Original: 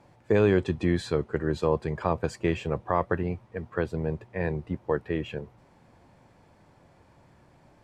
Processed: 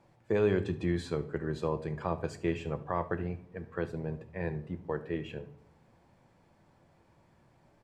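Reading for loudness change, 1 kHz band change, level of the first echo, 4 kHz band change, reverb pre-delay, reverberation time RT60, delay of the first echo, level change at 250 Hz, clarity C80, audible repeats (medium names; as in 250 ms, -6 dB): -6.0 dB, -6.5 dB, -19.5 dB, -6.5 dB, 5 ms, 0.65 s, 72 ms, -6.0 dB, 19.0 dB, 1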